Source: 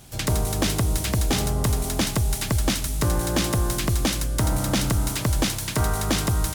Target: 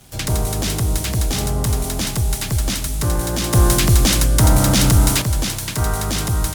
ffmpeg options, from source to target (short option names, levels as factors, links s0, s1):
-filter_complex "[0:a]acrossover=split=130|4200[s0][s1][s2];[s1]alimiter=limit=0.0841:level=0:latency=1:release=10[s3];[s0][s3][s2]amix=inputs=3:normalize=0,asettb=1/sr,asplit=3[s4][s5][s6];[s4]atrim=end=3.534[s7];[s5]atrim=start=3.53:end=5.22,asetpts=PTS-STARTPTS,afade=t=in:d=0.004:c=qsin,afade=t=out:st=1.686:d=0.004:c=qsin,acontrast=70[s8];[s6]atrim=start=5.216[s9];[s7][s8]acrossfade=d=0.004:c1=hsin:c2=qsin[s10];[s10][s9]acrossfade=d=0.004:c1=qsin:c2=hsin,aeval=exprs='sgn(val(0))*max(abs(val(0))-0.00178,0)':c=same,volume=1.58"